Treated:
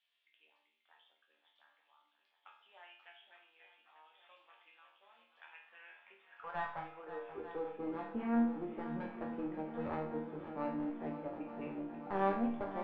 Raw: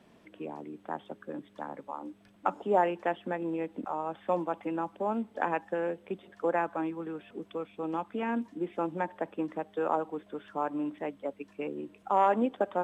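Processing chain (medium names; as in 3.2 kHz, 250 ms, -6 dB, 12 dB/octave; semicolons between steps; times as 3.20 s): high-pass sweep 3.4 kHz -> 140 Hz, 5.51–8.41 s; one-sided clip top -31.5 dBFS; distance through air 350 m; chord resonator D#2 major, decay 0.52 s; shuffle delay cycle 892 ms, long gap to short 1.5:1, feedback 76%, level -12 dB; trim +7.5 dB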